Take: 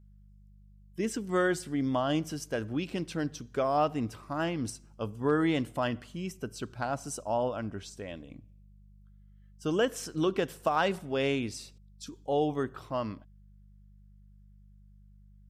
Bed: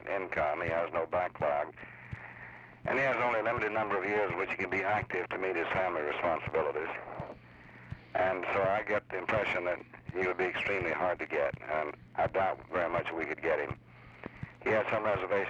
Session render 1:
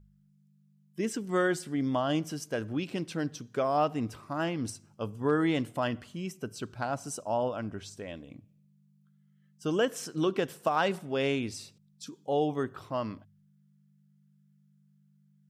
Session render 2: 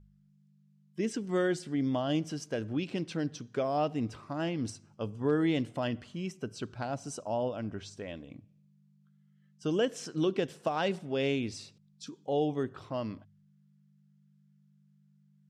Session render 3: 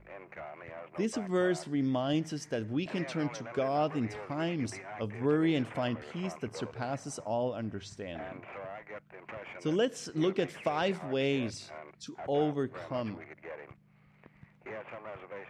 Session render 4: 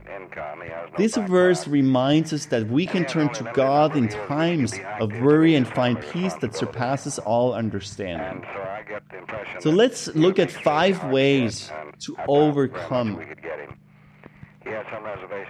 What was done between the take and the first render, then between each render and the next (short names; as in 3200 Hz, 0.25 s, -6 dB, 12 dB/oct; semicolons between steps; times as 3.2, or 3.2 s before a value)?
de-hum 50 Hz, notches 2
LPF 6600 Hz 12 dB/oct; dynamic EQ 1200 Hz, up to -8 dB, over -45 dBFS, Q 1.1
add bed -13.5 dB
gain +11.5 dB